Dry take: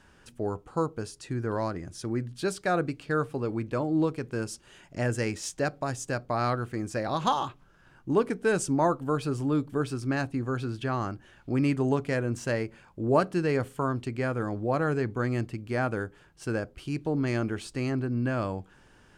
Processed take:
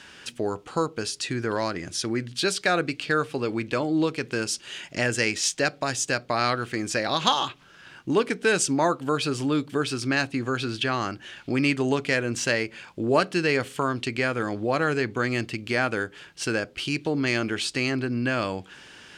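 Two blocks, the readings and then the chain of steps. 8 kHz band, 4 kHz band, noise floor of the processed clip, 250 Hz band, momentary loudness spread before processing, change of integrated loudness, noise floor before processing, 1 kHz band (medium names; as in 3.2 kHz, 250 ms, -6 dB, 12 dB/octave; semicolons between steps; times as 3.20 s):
+10.5 dB, +14.5 dB, -52 dBFS, +2.0 dB, 9 LU, +4.0 dB, -58 dBFS, +3.0 dB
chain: frequency weighting D; in parallel at +3 dB: compression, threshold -35 dBFS, peak gain reduction 16.5 dB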